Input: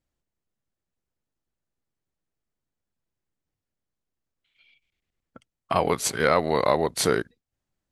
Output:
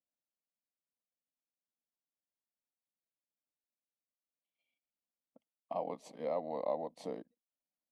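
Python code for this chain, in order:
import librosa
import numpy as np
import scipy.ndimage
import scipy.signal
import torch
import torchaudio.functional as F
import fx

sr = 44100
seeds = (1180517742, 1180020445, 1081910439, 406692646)

y = fx.bandpass_q(x, sr, hz=420.0, q=0.98)
y = fx.low_shelf(y, sr, hz=430.0, db=-5.0)
y = fx.fixed_phaser(y, sr, hz=390.0, stages=6)
y = y * 10.0 ** (-7.5 / 20.0)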